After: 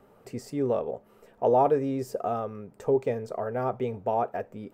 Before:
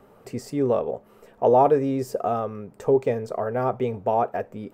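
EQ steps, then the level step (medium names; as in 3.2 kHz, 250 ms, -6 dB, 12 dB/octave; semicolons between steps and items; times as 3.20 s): band-stop 1.1 kHz, Q 29; -4.5 dB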